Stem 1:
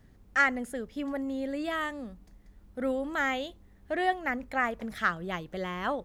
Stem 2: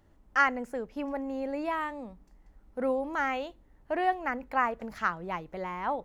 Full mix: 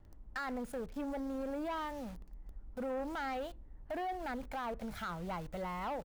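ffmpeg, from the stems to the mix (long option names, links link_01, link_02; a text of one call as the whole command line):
ffmpeg -i stem1.wav -i stem2.wav -filter_complex "[0:a]highpass=frequency=51:poles=1,acompressor=threshold=-34dB:ratio=6,acrusher=bits=7:mix=0:aa=0.000001,volume=-6.5dB[link_01];[1:a]highshelf=frequency=2700:gain=-11.5,alimiter=level_in=1.5dB:limit=-24dB:level=0:latency=1,volume=-1.5dB,adelay=1.6,volume=-1.5dB,asplit=2[link_02][link_03];[link_03]apad=whole_len=266395[link_04];[link_01][link_04]sidechaincompress=threshold=-39dB:ratio=8:attack=42:release=104[link_05];[link_05][link_02]amix=inputs=2:normalize=0,lowshelf=frequency=100:gain=11.5,asoftclip=type=tanh:threshold=-33.5dB" out.wav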